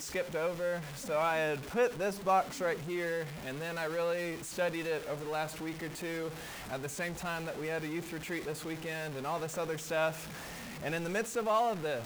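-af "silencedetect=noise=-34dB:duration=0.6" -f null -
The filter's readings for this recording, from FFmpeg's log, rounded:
silence_start: 10.11
silence_end: 10.84 | silence_duration: 0.73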